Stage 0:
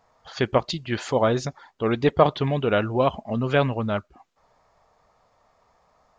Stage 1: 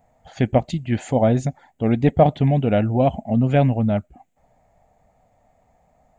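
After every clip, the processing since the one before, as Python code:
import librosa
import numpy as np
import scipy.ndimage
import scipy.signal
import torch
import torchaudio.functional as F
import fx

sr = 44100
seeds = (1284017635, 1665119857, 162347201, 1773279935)

y = fx.curve_eq(x, sr, hz=(260.0, 390.0, 750.0, 1100.0, 2100.0, 5300.0, 7600.0), db=(0, -11, -2, -21, -8, -21, -2))
y = y * 10.0 ** (8.0 / 20.0)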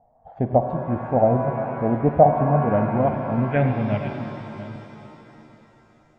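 y = fx.reverse_delay(x, sr, ms=476, wet_db=-13.5)
y = fx.filter_sweep_lowpass(y, sr, from_hz=780.0, to_hz=5900.0, start_s=2.3, end_s=5.16, q=2.5)
y = fx.rev_shimmer(y, sr, seeds[0], rt60_s=3.3, semitones=7, shimmer_db=-8, drr_db=6.0)
y = y * 10.0 ** (-5.0 / 20.0)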